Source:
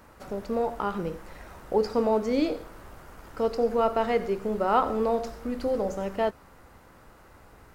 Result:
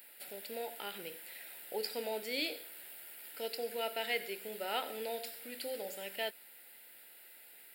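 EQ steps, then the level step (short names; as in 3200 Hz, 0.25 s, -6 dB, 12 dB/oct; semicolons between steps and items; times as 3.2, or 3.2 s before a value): HPF 260 Hz 6 dB/oct; differentiator; fixed phaser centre 2700 Hz, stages 4; +12.5 dB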